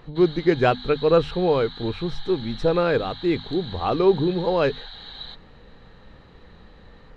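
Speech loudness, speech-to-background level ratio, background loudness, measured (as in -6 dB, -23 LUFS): -22.5 LUFS, 15.5 dB, -38.0 LUFS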